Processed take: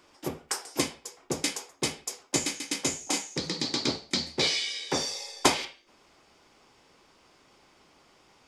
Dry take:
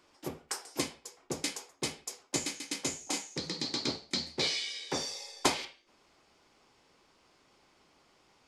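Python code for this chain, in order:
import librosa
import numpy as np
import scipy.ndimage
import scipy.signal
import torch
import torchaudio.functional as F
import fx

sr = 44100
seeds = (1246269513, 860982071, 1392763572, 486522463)

y = fx.notch(x, sr, hz=4200.0, q=24.0)
y = F.gain(torch.from_numpy(y), 5.5).numpy()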